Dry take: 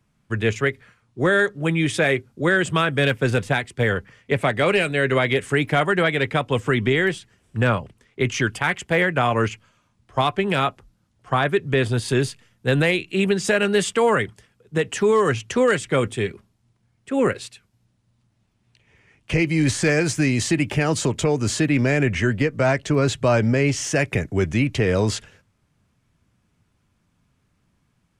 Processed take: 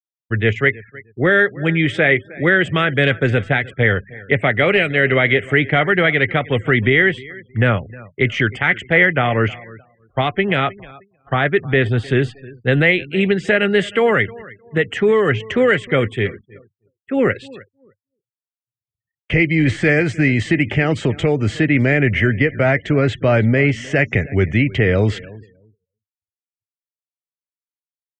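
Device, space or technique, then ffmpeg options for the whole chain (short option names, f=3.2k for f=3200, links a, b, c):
hearing-loss simulation: -filter_complex "[0:a]asettb=1/sr,asplit=3[a][b][c];[a]atrim=end=2.684[d];[b]atrim=start=2.68:end=3.31,asetpts=PTS-STARTPTS,afade=t=in:d=0.004:c=qsin,afade=t=out:st=0.626:d=0.004:c=qsin,adynamicequalizer=threshold=0.00355:dfrequency=6800:dqfactor=1.9:tfrequency=6800:tqfactor=1.9:attack=5:release=100:ratio=0.375:range=3:mode=boostabove:tftype=bell[e];[c]atrim=start=3.306[f];[d][e]acrossfade=d=0.004:c1=hsin:c2=qsin[g];[g][f]acrossfade=d=0.004:c1=qsin:c2=hsin,aecho=1:1:310|620|930:0.0891|0.0357|0.0143,afftfilt=real='re*gte(hypot(re,im),0.00794)':imag='im*gte(hypot(re,im),0.00794)':win_size=1024:overlap=0.75,lowpass=2.2k,agate=range=-33dB:threshold=-40dB:ratio=3:detection=peak,equalizer=f=100:t=o:w=0.33:g=4,equalizer=f=1k:t=o:w=0.33:g=-10,equalizer=f=2k:t=o:w=0.33:g=10,equalizer=f=3.15k:t=o:w=0.33:g=8,equalizer=f=8k:t=o:w=0.33:g=10,volume=3.5dB"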